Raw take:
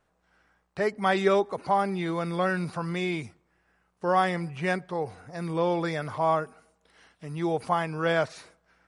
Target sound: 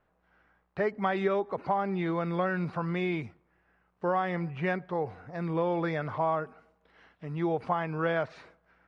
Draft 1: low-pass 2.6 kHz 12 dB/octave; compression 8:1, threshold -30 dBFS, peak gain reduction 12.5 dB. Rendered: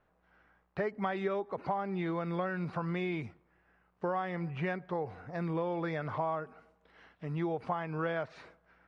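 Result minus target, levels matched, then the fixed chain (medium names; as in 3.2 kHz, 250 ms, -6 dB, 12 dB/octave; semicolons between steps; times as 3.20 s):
compression: peak gain reduction +5.5 dB
low-pass 2.6 kHz 12 dB/octave; compression 8:1, threshold -23.5 dBFS, peak gain reduction 7 dB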